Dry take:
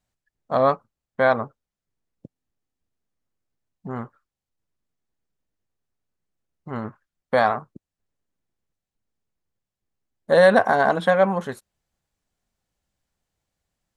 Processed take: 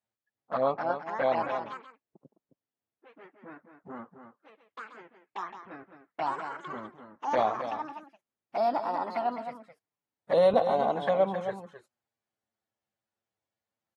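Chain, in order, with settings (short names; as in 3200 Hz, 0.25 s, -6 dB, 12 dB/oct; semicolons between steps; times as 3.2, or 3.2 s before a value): envelope flanger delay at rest 9 ms, full sweep at -15 dBFS; tilt -2.5 dB/oct; on a send: echo 0.265 s -9 dB; on the sum: echoes that change speed 0.369 s, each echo +4 st, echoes 3, each echo -6 dB; weighting filter A; gain -5.5 dB; AAC 32 kbps 48000 Hz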